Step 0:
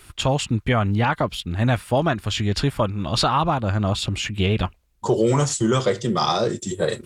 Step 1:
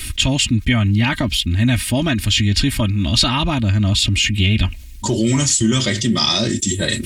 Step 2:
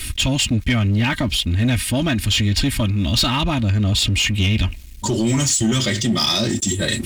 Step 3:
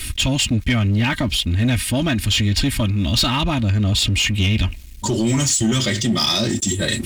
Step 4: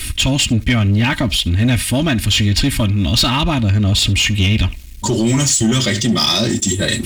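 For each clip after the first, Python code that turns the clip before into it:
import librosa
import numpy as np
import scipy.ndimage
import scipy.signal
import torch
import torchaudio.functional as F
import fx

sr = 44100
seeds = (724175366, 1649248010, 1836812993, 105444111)

y1 = fx.band_shelf(x, sr, hz=710.0, db=-15.5, octaves=2.4)
y1 = y1 + 0.64 * np.pad(y1, (int(3.2 * sr / 1000.0), 0))[:len(y1)]
y1 = fx.env_flatten(y1, sr, amount_pct=50)
y1 = y1 * 10.0 ** (5.0 / 20.0)
y2 = fx.leveller(y1, sr, passes=2)
y2 = y2 * 10.0 ** (-8.0 / 20.0)
y3 = y2
y4 = y3 + 10.0 ** (-22.5 / 20.0) * np.pad(y3, (int(71 * sr / 1000.0), 0))[:len(y3)]
y4 = y4 * 10.0 ** (3.5 / 20.0)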